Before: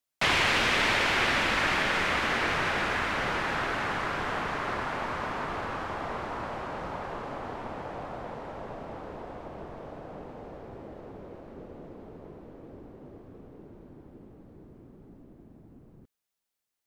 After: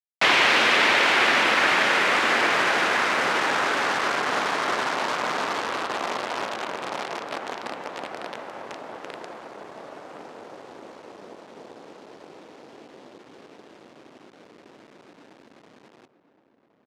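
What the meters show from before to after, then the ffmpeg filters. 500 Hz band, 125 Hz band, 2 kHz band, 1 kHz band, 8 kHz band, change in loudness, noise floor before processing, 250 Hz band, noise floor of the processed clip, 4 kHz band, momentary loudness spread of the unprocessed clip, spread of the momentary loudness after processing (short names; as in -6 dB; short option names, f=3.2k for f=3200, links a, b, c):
+6.0 dB, -6.5 dB, +6.5 dB, +6.5 dB, +7.0 dB, +7.0 dB, under -85 dBFS, +2.5 dB, -62 dBFS, +6.5 dB, 22 LU, 21 LU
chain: -filter_complex "[0:a]acrusher=bits=6:dc=4:mix=0:aa=0.000001,highpass=280,lowpass=5.5k,asplit=2[a][b];[b]adelay=1067,lowpass=f=1.7k:p=1,volume=-12dB,asplit=2[c][d];[d]adelay=1067,lowpass=f=1.7k:p=1,volume=0.4,asplit=2[e][f];[f]adelay=1067,lowpass=f=1.7k:p=1,volume=0.4,asplit=2[g][h];[h]adelay=1067,lowpass=f=1.7k:p=1,volume=0.4[i];[a][c][e][g][i]amix=inputs=5:normalize=0,volume=6.5dB"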